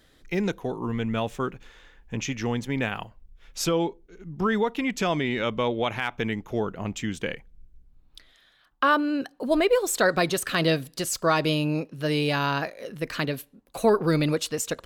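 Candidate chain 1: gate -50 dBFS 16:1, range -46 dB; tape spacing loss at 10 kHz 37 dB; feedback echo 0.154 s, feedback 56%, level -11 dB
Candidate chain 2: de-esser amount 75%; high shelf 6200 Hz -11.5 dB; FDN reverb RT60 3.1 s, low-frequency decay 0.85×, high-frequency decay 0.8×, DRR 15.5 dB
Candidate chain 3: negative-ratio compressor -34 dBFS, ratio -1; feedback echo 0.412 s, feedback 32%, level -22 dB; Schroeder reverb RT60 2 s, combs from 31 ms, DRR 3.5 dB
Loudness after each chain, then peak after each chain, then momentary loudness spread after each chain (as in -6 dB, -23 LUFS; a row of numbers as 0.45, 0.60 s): -28.5, -27.0, -32.0 LUFS; -12.5, -10.5, -11.5 dBFS; 12, 11, 11 LU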